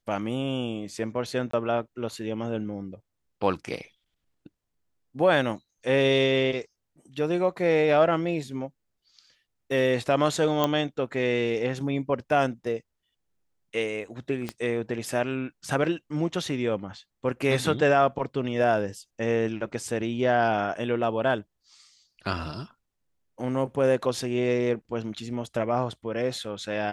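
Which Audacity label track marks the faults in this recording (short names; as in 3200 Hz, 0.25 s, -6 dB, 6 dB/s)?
1.510000	1.530000	gap 24 ms
10.640000	10.640000	pop -10 dBFS
14.490000	14.490000	pop -16 dBFS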